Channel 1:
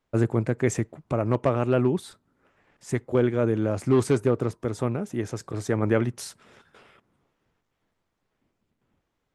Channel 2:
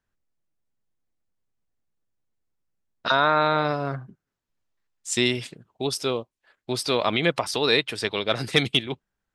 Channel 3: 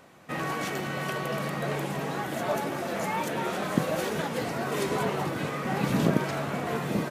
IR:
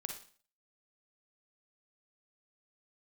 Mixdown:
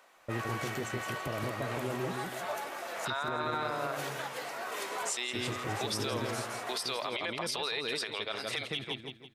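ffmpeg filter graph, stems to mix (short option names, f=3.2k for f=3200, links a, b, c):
-filter_complex "[0:a]acompressor=threshold=-27dB:ratio=6,adelay=150,volume=-5.5dB,asplit=3[a][b][c];[a]atrim=end=3.55,asetpts=PTS-STARTPTS,afade=t=out:st=3.546:d=0.004:c=hsin[d];[b]atrim=start=3.55:end=5.35,asetpts=PTS-STARTPTS,volume=0[e];[c]atrim=start=5.35,asetpts=PTS-STARTPTS,afade=t=in:d=0.004:c=hsin[f];[d][e][f]concat=n=3:v=0:a=1,asplit=2[g][h];[h]volume=-4dB[i];[1:a]equalizer=f=7.2k:w=1.5:g=-2.5,volume=2.5dB,asplit=2[j][k];[k]volume=-17.5dB[l];[2:a]volume=-4dB[m];[j][m]amix=inputs=2:normalize=0,highpass=680,acompressor=threshold=-30dB:ratio=3,volume=0dB[n];[i][l]amix=inputs=2:normalize=0,aecho=0:1:165|330|495|660|825:1|0.36|0.13|0.0467|0.0168[o];[g][n][o]amix=inputs=3:normalize=0,alimiter=limit=-23.5dB:level=0:latency=1:release=43"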